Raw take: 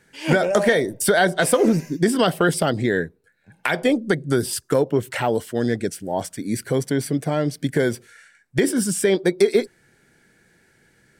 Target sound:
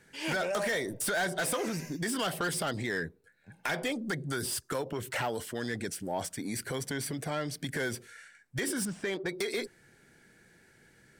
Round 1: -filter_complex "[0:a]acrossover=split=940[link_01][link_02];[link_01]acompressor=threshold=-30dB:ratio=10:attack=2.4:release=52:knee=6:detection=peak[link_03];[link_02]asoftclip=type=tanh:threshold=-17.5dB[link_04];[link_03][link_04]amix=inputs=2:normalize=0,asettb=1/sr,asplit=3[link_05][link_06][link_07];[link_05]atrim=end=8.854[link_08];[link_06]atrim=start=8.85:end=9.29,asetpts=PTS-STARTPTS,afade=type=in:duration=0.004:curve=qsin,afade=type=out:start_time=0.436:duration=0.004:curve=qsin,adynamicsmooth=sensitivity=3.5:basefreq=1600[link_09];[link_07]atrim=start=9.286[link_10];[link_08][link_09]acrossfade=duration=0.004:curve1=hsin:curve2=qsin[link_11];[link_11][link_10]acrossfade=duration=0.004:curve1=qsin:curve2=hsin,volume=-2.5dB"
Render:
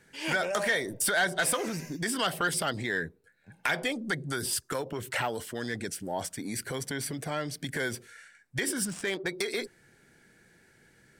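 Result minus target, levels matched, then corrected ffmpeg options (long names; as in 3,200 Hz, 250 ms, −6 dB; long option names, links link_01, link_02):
soft clipping: distortion −9 dB
-filter_complex "[0:a]acrossover=split=940[link_01][link_02];[link_01]acompressor=threshold=-30dB:ratio=10:attack=2.4:release=52:knee=6:detection=peak[link_03];[link_02]asoftclip=type=tanh:threshold=-27.5dB[link_04];[link_03][link_04]amix=inputs=2:normalize=0,asettb=1/sr,asplit=3[link_05][link_06][link_07];[link_05]atrim=end=8.854[link_08];[link_06]atrim=start=8.85:end=9.29,asetpts=PTS-STARTPTS,afade=type=in:duration=0.004:curve=qsin,afade=type=out:start_time=0.436:duration=0.004:curve=qsin,adynamicsmooth=sensitivity=3.5:basefreq=1600[link_09];[link_07]atrim=start=9.286[link_10];[link_08][link_09]acrossfade=duration=0.004:curve1=hsin:curve2=qsin[link_11];[link_11][link_10]acrossfade=duration=0.004:curve1=qsin:curve2=hsin,volume=-2.5dB"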